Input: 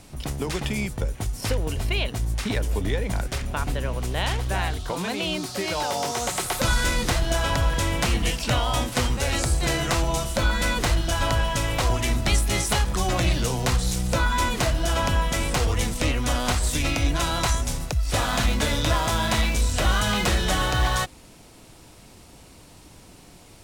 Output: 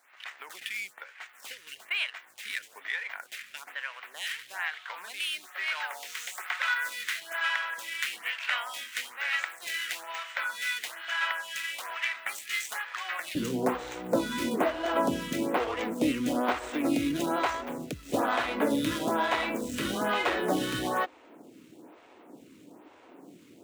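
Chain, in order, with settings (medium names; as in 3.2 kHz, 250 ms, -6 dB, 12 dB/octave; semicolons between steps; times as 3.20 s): median filter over 9 samples; resonant high-pass 1.8 kHz, resonance Q 2, from 13.35 s 280 Hz; lamp-driven phase shifter 1.1 Hz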